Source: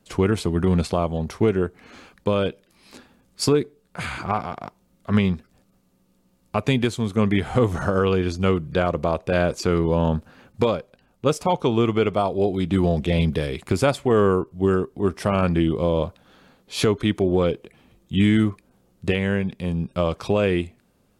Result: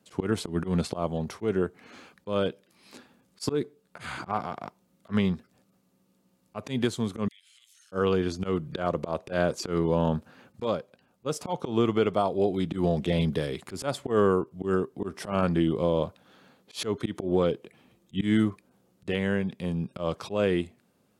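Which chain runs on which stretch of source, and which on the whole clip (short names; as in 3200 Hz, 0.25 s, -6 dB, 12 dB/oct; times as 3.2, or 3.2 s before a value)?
7.28–7.92 inverse Chebyshev high-pass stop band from 890 Hz, stop band 60 dB + compressor 3:1, threshold -54 dBFS
whole clip: HPF 120 Hz 12 dB/oct; dynamic EQ 2400 Hz, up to -6 dB, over -47 dBFS, Q 5.1; auto swell 0.115 s; gain -3.5 dB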